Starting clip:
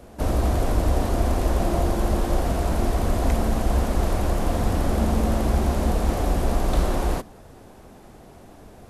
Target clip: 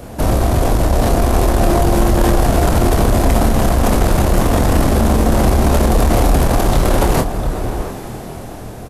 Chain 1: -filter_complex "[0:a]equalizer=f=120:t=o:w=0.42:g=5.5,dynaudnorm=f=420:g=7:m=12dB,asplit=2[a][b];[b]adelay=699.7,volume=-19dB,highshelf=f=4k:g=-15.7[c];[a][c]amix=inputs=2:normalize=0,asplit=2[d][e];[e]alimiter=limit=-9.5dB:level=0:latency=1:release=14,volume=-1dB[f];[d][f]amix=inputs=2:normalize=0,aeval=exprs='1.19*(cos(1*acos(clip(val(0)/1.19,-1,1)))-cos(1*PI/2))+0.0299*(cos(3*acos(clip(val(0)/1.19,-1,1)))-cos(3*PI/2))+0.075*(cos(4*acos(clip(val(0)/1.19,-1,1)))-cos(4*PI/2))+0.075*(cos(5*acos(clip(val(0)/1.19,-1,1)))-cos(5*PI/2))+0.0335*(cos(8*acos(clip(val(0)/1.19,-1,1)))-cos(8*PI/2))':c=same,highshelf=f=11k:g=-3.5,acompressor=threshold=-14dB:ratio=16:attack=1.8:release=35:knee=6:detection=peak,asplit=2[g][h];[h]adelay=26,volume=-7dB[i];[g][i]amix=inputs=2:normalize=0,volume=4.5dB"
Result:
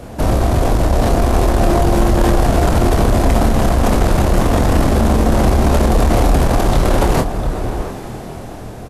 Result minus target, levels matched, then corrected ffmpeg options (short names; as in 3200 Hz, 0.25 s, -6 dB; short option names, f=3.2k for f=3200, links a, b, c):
8000 Hz band -3.0 dB
-filter_complex "[0:a]equalizer=f=120:t=o:w=0.42:g=5.5,dynaudnorm=f=420:g=7:m=12dB,asplit=2[a][b];[b]adelay=699.7,volume=-19dB,highshelf=f=4k:g=-15.7[c];[a][c]amix=inputs=2:normalize=0,asplit=2[d][e];[e]alimiter=limit=-9.5dB:level=0:latency=1:release=14,volume=-1dB[f];[d][f]amix=inputs=2:normalize=0,aeval=exprs='1.19*(cos(1*acos(clip(val(0)/1.19,-1,1)))-cos(1*PI/2))+0.0299*(cos(3*acos(clip(val(0)/1.19,-1,1)))-cos(3*PI/2))+0.075*(cos(4*acos(clip(val(0)/1.19,-1,1)))-cos(4*PI/2))+0.075*(cos(5*acos(clip(val(0)/1.19,-1,1)))-cos(5*PI/2))+0.0335*(cos(8*acos(clip(val(0)/1.19,-1,1)))-cos(8*PI/2))':c=same,highshelf=f=11k:g=6,acompressor=threshold=-14dB:ratio=16:attack=1.8:release=35:knee=6:detection=peak,asplit=2[g][h];[h]adelay=26,volume=-7dB[i];[g][i]amix=inputs=2:normalize=0,volume=4.5dB"